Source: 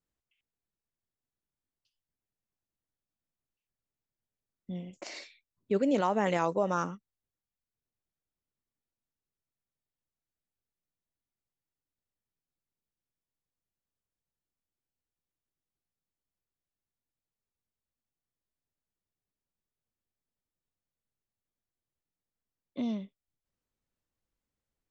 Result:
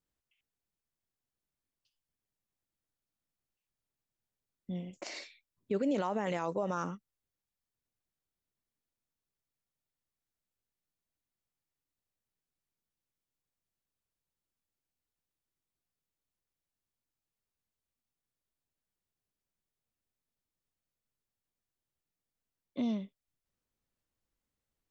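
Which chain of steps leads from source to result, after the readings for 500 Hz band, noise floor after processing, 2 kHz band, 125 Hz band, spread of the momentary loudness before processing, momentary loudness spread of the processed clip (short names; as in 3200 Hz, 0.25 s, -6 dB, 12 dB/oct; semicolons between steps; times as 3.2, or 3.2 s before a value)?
-4.5 dB, under -85 dBFS, -5.0 dB, -3.0 dB, 18 LU, 17 LU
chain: limiter -23.5 dBFS, peak gain reduction 8 dB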